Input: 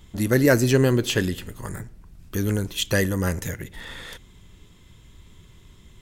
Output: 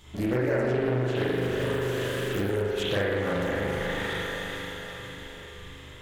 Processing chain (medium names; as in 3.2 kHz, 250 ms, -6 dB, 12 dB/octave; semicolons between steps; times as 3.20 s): tilt EQ +1.5 dB/octave; hum notches 50/100/150/200/250/300 Hz; echo that smears into a reverb 461 ms, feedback 52%, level -10 dB; de-esser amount 95%; treble shelf 9.6 kHz -7.5 dB, from 1.16 s +6 dB, from 2.62 s -4.5 dB; spring tank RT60 1.6 s, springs 40 ms, chirp 80 ms, DRR -9 dB; compression 5:1, threshold -24 dBFS, peak gain reduction 13.5 dB; loudspeaker Doppler distortion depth 0.32 ms